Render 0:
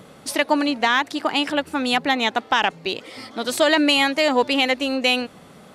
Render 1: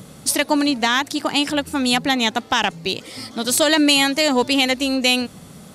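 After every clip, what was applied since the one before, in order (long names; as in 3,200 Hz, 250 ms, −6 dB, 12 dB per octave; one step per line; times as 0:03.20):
bass and treble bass +11 dB, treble +12 dB
level −1 dB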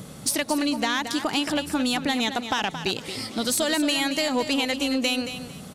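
downward compressor, threshold −20 dBFS, peak gain reduction 9 dB
soft clipping −13.5 dBFS, distortion −21 dB
repeating echo 224 ms, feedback 23%, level −10 dB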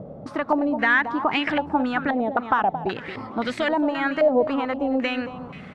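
low-pass on a step sequencer 3.8 Hz 620–2,100 Hz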